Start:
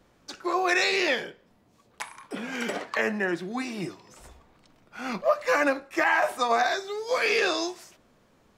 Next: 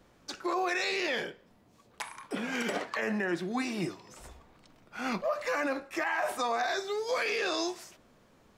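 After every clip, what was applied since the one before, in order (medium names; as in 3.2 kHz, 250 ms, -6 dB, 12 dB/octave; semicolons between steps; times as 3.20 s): peak limiter -22 dBFS, peak gain reduction 9.5 dB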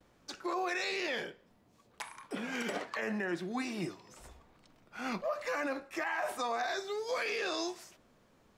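gate with hold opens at -55 dBFS; trim -4 dB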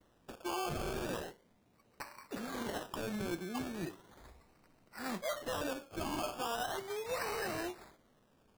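decimation with a swept rate 18×, swing 60% 0.37 Hz; trim -3 dB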